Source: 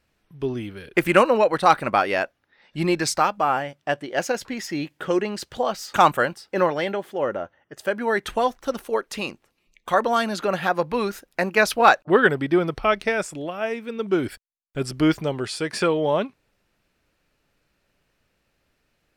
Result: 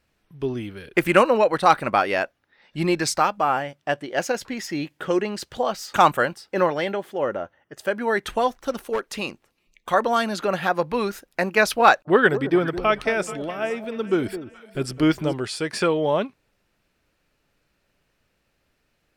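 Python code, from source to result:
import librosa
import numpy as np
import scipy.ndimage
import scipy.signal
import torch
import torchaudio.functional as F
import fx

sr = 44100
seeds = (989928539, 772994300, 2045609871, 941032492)

y = fx.overload_stage(x, sr, gain_db=19.0, at=(8.69, 9.12), fade=0.02)
y = fx.echo_alternate(y, sr, ms=212, hz=940.0, feedback_pct=61, wet_db=-11.5, at=(11.92, 15.38))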